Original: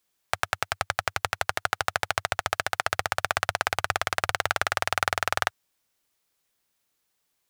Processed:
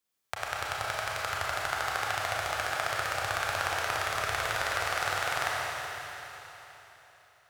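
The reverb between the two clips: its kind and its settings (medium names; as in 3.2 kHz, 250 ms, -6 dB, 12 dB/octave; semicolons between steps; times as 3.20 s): Schroeder reverb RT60 3.7 s, combs from 28 ms, DRR -5 dB; trim -9 dB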